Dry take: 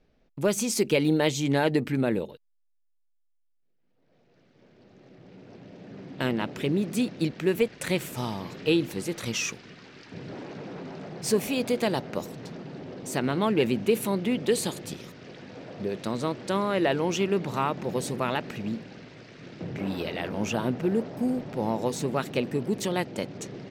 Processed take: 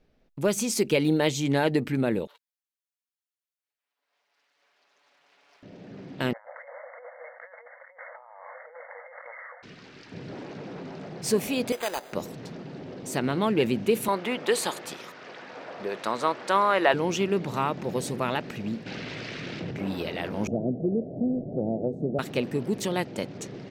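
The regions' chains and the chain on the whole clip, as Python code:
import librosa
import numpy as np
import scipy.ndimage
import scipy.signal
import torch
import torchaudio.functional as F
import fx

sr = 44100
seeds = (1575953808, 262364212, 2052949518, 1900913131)

y = fx.chain(x, sr, fx.lower_of_two(delay_ms=7.0),
    fx.highpass(hz=1200.0, slope=12), at=(2.27, 5.63))
y = fx.chain(y, sr, fx.block_float(bits=5),
    fx.brickwall_bandpass(low_hz=490.0, high_hz=2200.0),
    fx.over_compress(threshold_db=-46.0, ratio=-1.0), at=(6.33, 9.63))
y = fx.chain(y, sr, fx.highpass(hz=620.0, slope=12),
    fx.resample_bad(factor=8, down='none', up='hold'), at=(11.72, 12.13))
y = fx.chain(y, sr, fx.highpass(hz=550.0, slope=6),
    fx.peak_eq(hz=1100.0, db=10.5, octaves=2.0), at=(14.08, 16.94))
y = fx.chain(y, sr, fx.peak_eq(hz=2800.0, db=6.5, octaves=1.9),
    fx.env_flatten(amount_pct=70), at=(18.86, 19.71))
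y = fx.chain(y, sr, fx.ellip_lowpass(hz=680.0, order=4, stop_db=40),
    fx.band_squash(depth_pct=70), at=(20.47, 22.19))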